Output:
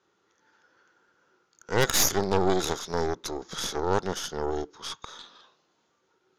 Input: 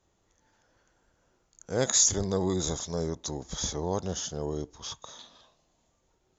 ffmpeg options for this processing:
-af "highpass=230,equalizer=f=250:t=q:w=4:g=-4,equalizer=f=390:t=q:w=4:g=4,equalizer=f=650:t=q:w=4:g=-9,equalizer=f=1.4k:t=q:w=4:g=9,lowpass=f=5.6k:w=0.5412,lowpass=f=5.6k:w=1.3066,aeval=exprs='0.211*(cos(1*acos(clip(val(0)/0.211,-1,1)))-cos(1*PI/2))+0.0668*(cos(6*acos(clip(val(0)/0.211,-1,1)))-cos(6*PI/2))+0.0119*(cos(8*acos(clip(val(0)/0.211,-1,1)))-cos(8*PI/2))':c=same,volume=3dB"

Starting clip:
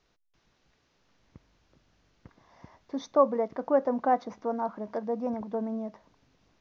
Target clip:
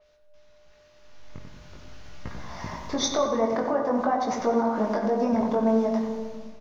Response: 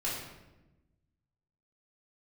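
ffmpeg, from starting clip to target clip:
-filter_complex "[0:a]equalizer=f=240:t=o:w=2.6:g=-7.5,acompressor=threshold=-36dB:ratio=5,alimiter=level_in=11dB:limit=-24dB:level=0:latency=1:release=199,volume=-11dB,dynaudnorm=f=540:g=5:m=15dB,aeval=exprs='val(0)+0.000708*sin(2*PI*600*n/s)':c=same,flanger=delay=17:depth=5.4:speed=0.44,asplit=2[a][b];[b]adelay=92,lowpass=f=2k:p=1,volume=-6dB,asplit=2[c][d];[d]adelay=92,lowpass=f=2k:p=1,volume=0.54,asplit=2[e][f];[f]adelay=92,lowpass=f=2k:p=1,volume=0.54,asplit=2[g][h];[h]adelay=92,lowpass=f=2k:p=1,volume=0.54,asplit=2[i][j];[j]adelay=92,lowpass=f=2k:p=1,volume=0.54,asplit=2[k][l];[l]adelay=92,lowpass=f=2k:p=1,volume=0.54,asplit=2[m][n];[n]adelay=92,lowpass=f=2k:p=1,volume=0.54[o];[a][c][e][g][i][k][m][o]amix=inputs=8:normalize=0,asplit=2[p][q];[1:a]atrim=start_sample=2205,asetrate=25137,aresample=44100[r];[q][r]afir=irnorm=-1:irlink=0,volume=-12.5dB[s];[p][s]amix=inputs=2:normalize=0,adynamicequalizer=threshold=0.00141:dfrequency=4900:dqfactor=0.7:tfrequency=4900:tqfactor=0.7:attack=5:release=100:ratio=0.375:range=3.5:mode=boostabove:tftype=highshelf,volume=5.5dB"

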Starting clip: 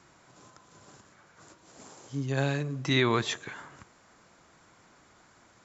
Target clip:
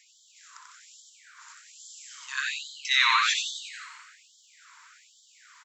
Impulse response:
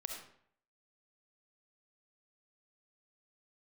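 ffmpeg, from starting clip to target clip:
-filter_complex "[0:a]asplit=9[a][b][c][d][e][f][g][h][i];[b]adelay=90,afreqshift=130,volume=-4.5dB[j];[c]adelay=180,afreqshift=260,volume=-9.4dB[k];[d]adelay=270,afreqshift=390,volume=-14.3dB[l];[e]adelay=360,afreqshift=520,volume=-19.1dB[m];[f]adelay=450,afreqshift=650,volume=-24dB[n];[g]adelay=540,afreqshift=780,volume=-28.9dB[o];[h]adelay=630,afreqshift=910,volume=-33.8dB[p];[i]adelay=720,afreqshift=1040,volume=-38.7dB[q];[a][j][k][l][m][n][o][p][q]amix=inputs=9:normalize=0,asplit=2[r][s];[1:a]atrim=start_sample=2205,adelay=62[t];[s][t]afir=irnorm=-1:irlink=0,volume=-5.5dB[u];[r][u]amix=inputs=2:normalize=0,afftfilt=real='re*gte(b*sr/1024,860*pow(3100/860,0.5+0.5*sin(2*PI*1.2*pts/sr)))':imag='im*gte(b*sr/1024,860*pow(3100/860,0.5+0.5*sin(2*PI*1.2*pts/sr)))':win_size=1024:overlap=0.75,volume=6dB"

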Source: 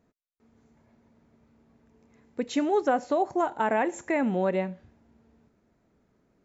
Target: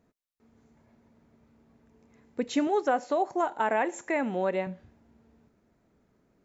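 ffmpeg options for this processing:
-filter_complex "[0:a]asettb=1/sr,asplit=3[a][b][c];[a]atrim=end=2.674[d];[b]atrim=start=2.67:end=4.67,asetpts=PTS-STARTPTS,afade=t=in:d=0.004:c=qsin,afade=t=out:st=1.996:d=0.004:c=qsin,highpass=f=360:p=1[e];[c]atrim=start=4.666[f];[d][e]acrossfade=d=0.004:c1=hsin:c2=qsin[g];[g][f]acrossfade=d=0.004:c1=qsin:c2=hsin"

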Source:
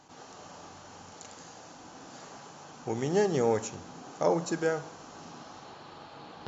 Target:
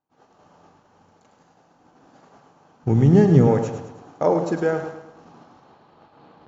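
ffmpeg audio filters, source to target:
-filter_complex "[0:a]lowpass=f=1.4k:p=1,agate=range=-33dB:threshold=-40dB:ratio=3:detection=peak,asplit=3[a][b][c];[a]afade=t=out:st=2.83:d=0.02[d];[b]asubboost=boost=9:cutoff=210,afade=t=in:st=2.83:d=0.02,afade=t=out:st=3.46:d=0.02[e];[c]afade=t=in:st=3.46:d=0.02[f];[d][e][f]amix=inputs=3:normalize=0,aecho=1:1:106|212|318|424|530:0.355|0.16|0.0718|0.0323|0.0145,volume=7.5dB"

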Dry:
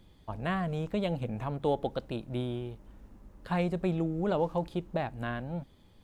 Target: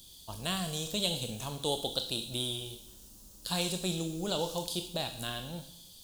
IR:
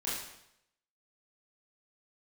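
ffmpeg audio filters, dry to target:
-filter_complex "[0:a]aexciter=amount=6.9:drive=9.8:freq=3.2k,asplit=2[a][b];[1:a]atrim=start_sample=2205,highshelf=f=2.9k:g=11[c];[b][c]afir=irnorm=-1:irlink=0,volume=-12dB[d];[a][d]amix=inputs=2:normalize=0,volume=-6.5dB"

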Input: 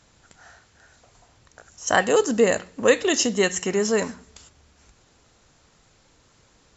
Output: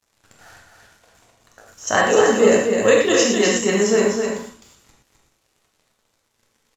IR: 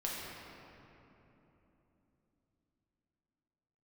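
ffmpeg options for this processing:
-filter_complex "[0:a]acrusher=bits=7:mix=0:aa=0.5,aecho=1:1:257|381:0.562|0.126[a];[1:a]atrim=start_sample=2205,atrim=end_sample=3528,asetrate=27783,aresample=44100[b];[a][b]afir=irnorm=-1:irlink=0"

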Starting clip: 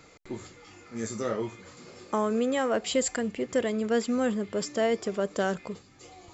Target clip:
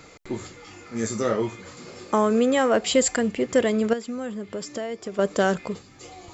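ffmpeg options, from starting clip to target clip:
-filter_complex "[0:a]asettb=1/sr,asplit=3[a][b][c];[a]atrim=end=3.934[d];[b]atrim=start=3.93:end=5.19,asetpts=PTS-STARTPTS,afade=t=in:d=0.004:c=qsin,afade=t=out:st=1.256:d=0.004:c=qsin,acompressor=threshold=-37dB:ratio=4[e];[c]atrim=start=5.186[f];[d][e]acrossfade=d=0.004:c1=hsin:c2=qsin[g];[g][f]acrossfade=d=0.004:c1=qsin:c2=hsin,volume=6.5dB"

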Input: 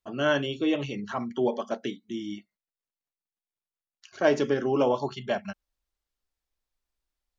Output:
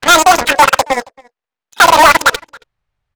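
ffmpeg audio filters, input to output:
-filter_complex "[0:a]acrossover=split=210[a][b];[b]acontrast=75[c];[a][c]amix=inputs=2:normalize=0,asoftclip=type=hard:threshold=-21.5dB,adynamicsmooth=sensitivity=4.5:basefreq=1.2k,aeval=exprs='0.0841*(cos(1*acos(clip(val(0)/0.0841,-1,1)))-cos(1*PI/2))+0.0376*(cos(3*acos(clip(val(0)/0.0841,-1,1)))-cos(3*PI/2))':c=same,asplit=2[d][e];[e]adelay=641.4,volume=-30dB,highshelf=f=4k:g=-14.4[f];[d][f]amix=inputs=2:normalize=0,asetrate=103194,aresample=44100,alimiter=level_in=22dB:limit=-1dB:release=50:level=0:latency=1,volume=-1dB"

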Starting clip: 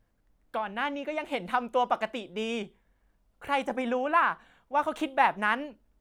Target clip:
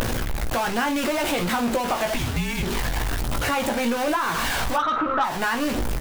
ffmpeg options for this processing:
-filter_complex "[0:a]aeval=exprs='val(0)+0.5*0.0668*sgn(val(0))':c=same,asettb=1/sr,asplit=3[a][b][c];[a]atrim=end=2.144[d];[b]atrim=start=2.14:end=2.63,asetpts=PTS-STARTPTS,afade=t=in:d=0.004:c=qsin,afade=t=out:st=0.486:d=0.004:c=qsin,afreqshift=-260[e];[c]atrim=start=2.626[f];[d][e]acrossfade=d=0.004:c1=hsin:c2=qsin[g];[g][f]acrossfade=d=0.004:c1=qsin:c2=hsin,asettb=1/sr,asplit=3[h][i][j];[h]atrim=end=4.764[k];[i]atrim=start=4.76:end=5.24,asetpts=PTS-STARTPTS,afade=t=in:d=0.004:c=qsin,afade=t=out:st=0.476:d=0.004:c=qsin,lowpass=f=1.3k:t=q:w=12[l];[j]atrim=start=5.236[m];[k][l]acrossfade=d=0.004:c1=hsin:c2=qsin[n];[n][m]acrossfade=d=0.004:c1=qsin:c2=hsin,asoftclip=type=tanh:threshold=-11.5dB,aphaser=in_gain=1:out_gain=1:delay=1.4:decay=0.23:speed=1.2:type=triangular,acompressor=threshold=-22dB:ratio=6,asplit=2[o][p];[p]aecho=0:1:17|54:0.531|0.211[q];[o][q]amix=inputs=2:normalize=0,acompressor=mode=upward:threshold=-19dB:ratio=2.5,equalizer=f=190:w=7.8:g=-5.5"

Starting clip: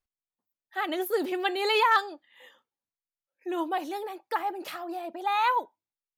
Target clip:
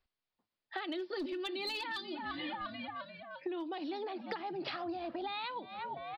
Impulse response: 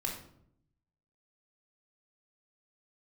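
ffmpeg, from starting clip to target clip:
-filter_complex "[0:a]asplit=5[a][b][c][d][e];[b]adelay=348,afreqshift=-63,volume=-20.5dB[f];[c]adelay=696,afreqshift=-126,volume=-25.4dB[g];[d]adelay=1044,afreqshift=-189,volume=-30.3dB[h];[e]adelay=1392,afreqshift=-252,volume=-35.1dB[i];[a][f][g][h][i]amix=inputs=5:normalize=0,aresample=11025,aresample=44100,asplit=3[j][k][l];[j]afade=t=out:st=0.95:d=0.02[m];[k]aecho=1:1:3.4:0.77,afade=t=in:st=0.95:d=0.02,afade=t=out:st=3.48:d=0.02[n];[l]afade=t=in:st=3.48:d=0.02[o];[m][n][o]amix=inputs=3:normalize=0,acrossover=split=330|3000[p][q][r];[q]acompressor=threshold=-41dB:ratio=5[s];[p][s][r]amix=inputs=3:normalize=0,aeval=exprs='clip(val(0),-1,0.0398)':c=same,acompressor=threshold=-43dB:ratio=10,volume=7dB"

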